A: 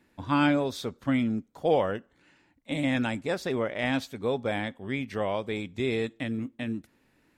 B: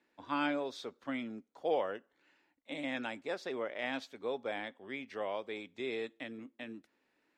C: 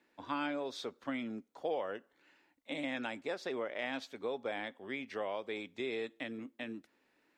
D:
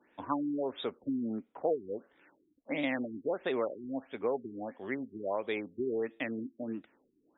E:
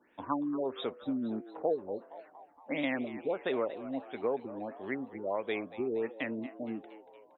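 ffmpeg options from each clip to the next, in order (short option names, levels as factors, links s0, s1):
-filter_complex "[0:a]acrossover=split=270 6800:gain=0.1 1 0.224[s0][s1][s2];[s0][s1][s2]amix=inputs=3:normalize=0,volume=0.422"
-af "acompressor=threshold=0.0126:ratio=2.5,volume=1.41"
-af "afftfilt=real='re*lt(b*sr/1024,390*pow(3900/390,0.5+0.5*sin(2*PI*1.5*pts/sr)))':imag='im*lt(b*sr/1024,390*pow(3900/390,0.5+0.5*sin(2*PI*1.5*pts/sr)))':win_size=1024:overlap=0.75,volume=2"
-filter_complex "[0:a]asplit=7[s0][s1][s2][s3][s4][s5][s6];[s1]adelay=233,afreqshift=100,volume=0.168[s7];[s2]adelay=466,afreqshift=200,volume=0.0977[s8];[s3]adelay=699,afreqshift=300,volume=0.0562[s9];[s4]adelay=932,afreqshift=400,volume=0.0327[s10];[s5]adelay=1165,afreqshift=500,volume=0.0191[s11];[s6]adelay=1398,afreqshift=600,volume=0.011[s12];[s0][s7][s8][s9][s10][s11][s12]amix=inputs=7:normalize=0"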